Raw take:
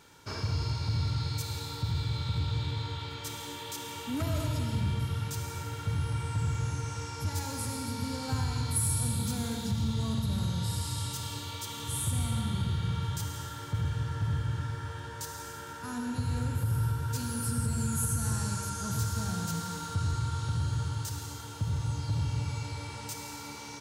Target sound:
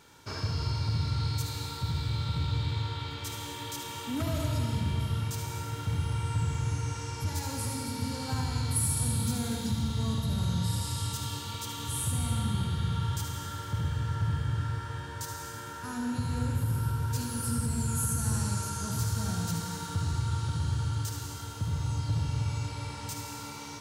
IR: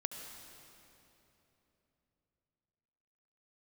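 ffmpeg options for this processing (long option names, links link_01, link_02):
-filter_complex "[0:a]asplit=2[link_01][link_02];[1:a]atrim=start_sample=2205,adelay=74[link_03];[link_02][link_03]afir=irnorm=-1:irlink=0,volume=-6dB[link_04];[link_01][link_04]amix=inputs=2:normalize=0"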